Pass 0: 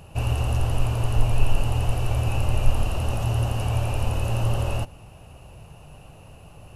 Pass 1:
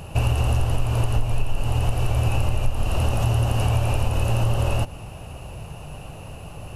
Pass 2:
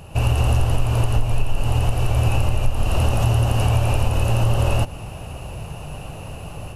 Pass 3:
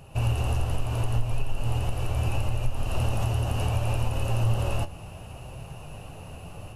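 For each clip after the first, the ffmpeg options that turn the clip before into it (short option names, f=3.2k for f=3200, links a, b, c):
-af "acompressor=threshold=-25dB:ratio=6,volume=8.5dB"
-af "dynaudnorm=f=110:g=3:m=7.5dB,volume=-3.5dB"
-af "flanger=delay=7.4:depth=4.6:regen=64:speed=0.71:shape=sinusoidal,volume=-3.5dB"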